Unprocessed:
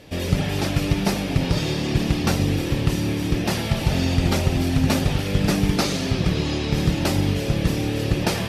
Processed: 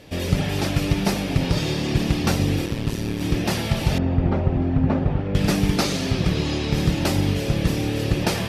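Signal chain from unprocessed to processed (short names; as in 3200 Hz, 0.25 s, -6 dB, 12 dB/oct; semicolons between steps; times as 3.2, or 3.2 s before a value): 2.66–3.21 AM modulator 110 Hz, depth 70%; 3.98–5.35 LPF 1200 Hz 12 dB/oct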